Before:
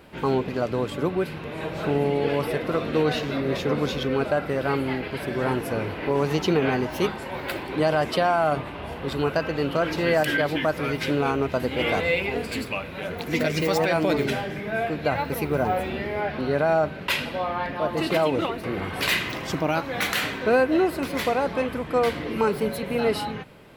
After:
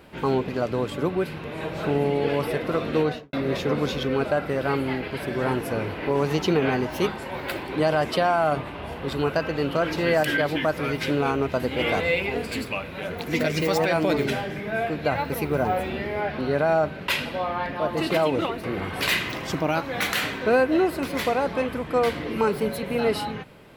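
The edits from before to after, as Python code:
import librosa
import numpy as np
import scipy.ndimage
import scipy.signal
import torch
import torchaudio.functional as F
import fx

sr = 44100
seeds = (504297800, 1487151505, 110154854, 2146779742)

y = fx.studio_fade_out(x, sr, start_s=2.98, length_s=0.35)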